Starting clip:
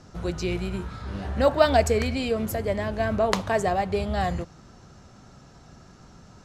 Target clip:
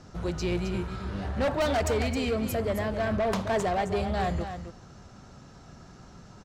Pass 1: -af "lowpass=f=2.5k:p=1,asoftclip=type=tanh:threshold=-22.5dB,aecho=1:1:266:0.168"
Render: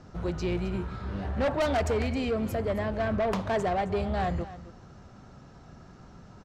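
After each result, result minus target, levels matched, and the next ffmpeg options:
8000 Hz band -6.0 dB; echo-to-direct -6.5 dB
-af "lowpass=f=9.7k:p=1,asoftclip=type=tanh:threshold=-22.5dB,aecho=1:1:266:0.168"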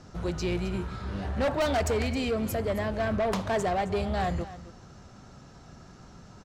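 echo-to-direct -6.5 dB
-af "lowpass=f=9.7k:p=1,asoftclip=type=tanh:threshold=-22.5dB,aecho=1:1:266:0.355"

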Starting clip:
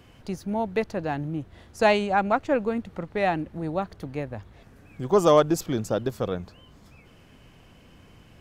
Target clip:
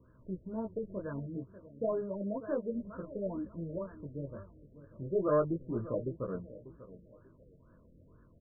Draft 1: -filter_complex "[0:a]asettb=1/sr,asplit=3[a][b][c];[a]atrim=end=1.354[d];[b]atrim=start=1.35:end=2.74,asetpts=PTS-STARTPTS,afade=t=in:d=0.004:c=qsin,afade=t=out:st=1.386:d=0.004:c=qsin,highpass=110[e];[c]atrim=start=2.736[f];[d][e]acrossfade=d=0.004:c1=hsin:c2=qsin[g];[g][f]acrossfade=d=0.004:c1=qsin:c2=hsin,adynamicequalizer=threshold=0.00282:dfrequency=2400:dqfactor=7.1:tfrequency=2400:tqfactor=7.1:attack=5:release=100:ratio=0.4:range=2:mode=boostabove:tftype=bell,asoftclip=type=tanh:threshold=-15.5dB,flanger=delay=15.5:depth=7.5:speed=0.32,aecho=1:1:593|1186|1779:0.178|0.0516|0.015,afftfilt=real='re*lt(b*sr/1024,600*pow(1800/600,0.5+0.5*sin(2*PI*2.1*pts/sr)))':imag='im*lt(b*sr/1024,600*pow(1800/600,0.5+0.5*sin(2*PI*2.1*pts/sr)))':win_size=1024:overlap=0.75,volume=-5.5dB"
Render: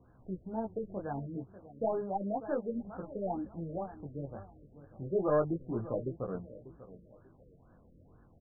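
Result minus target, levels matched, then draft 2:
1000 Hz band +4.5 dB
-filter_complex "[0:a]asettb=1/sr,asplit=3[a][b][c];[a]atrim=end=1.354[d];[b]atrim=start=1.35:end=2.74,asetpts=PTS-STARTPTS,afade=t=in:d=0.004:c=qsin,afade=t=out:st=1.386:d=0.004:c=qsin,highpass=110[e];[c]atrim=start=2.736[f];[d][e]acrossfade=d=0.004:c1=hsin:c2=qsin[g];[g][f]acrossfade=d=0.004:c1=qsin:c2=hsin,adynamicequalizer=threshold=0.00282:dfrequency=2400:dqfactor=7.1:tfrequency=2400:tqfactor=7.1:attack=5:release=100:ratio=0.4:range=2:mode=boostabove:tftype=bell,asuperstop=centerf=780:order=8:qfactor=3,asoftclip=type=tanh:threshold=-15.5dB,flanger=delay=15.5:depth=7.5:speed=0.32,aecho=1:1:593|1186|1779:0.178|0.0516|0.015,afftfilt=real='re*lt(b*sr/1024,600*pow(1800/600,0.5+0.5*sin(2*PI*2.1*pts/sr)))':imag='im*lt(b*sr/1024,600*pow(1800/600,0.5+0.5*sin(2*PI*2.1*pts/sr)))':win_size=1024:overlap=0.75,volume=-5.5dB"

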